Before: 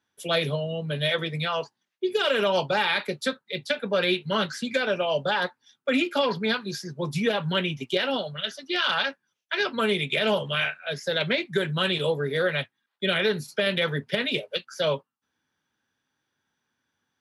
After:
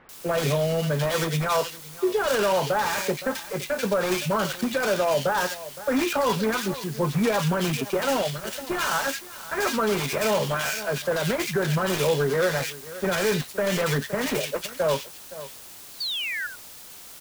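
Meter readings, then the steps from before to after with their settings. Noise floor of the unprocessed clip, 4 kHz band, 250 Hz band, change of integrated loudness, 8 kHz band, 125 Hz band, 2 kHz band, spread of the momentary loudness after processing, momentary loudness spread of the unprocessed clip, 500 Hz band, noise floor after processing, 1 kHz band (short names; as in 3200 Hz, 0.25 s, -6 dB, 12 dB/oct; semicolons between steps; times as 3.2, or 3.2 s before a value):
-82 dBFS, -3.5 dB, +2.5 dB, +1.0 dB, +13.5 dB, +4.0 dB, -1.0 dB, 8 LU, 8 LU, +2.0 dB, -44 dBFS, +3.5 dB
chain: switching dead time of 0.13 ms; dynamic EQ 1100 Hz, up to +5 dB, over -40 dBFS, Q 0.88; on a send: echo 0.515 s -21 dB; on the sum: limiter -17.5 dBFS, peak gain reduction 7 dB; painted sound fall, 15.91–16.47, 1400–4700 Hz -34 dBFS; in parallel at -11 dB: requantised 6-bit, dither triangular; on the sum: sample leveller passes 1; bands offset in time lows, highs 90 ms, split 2000 Hz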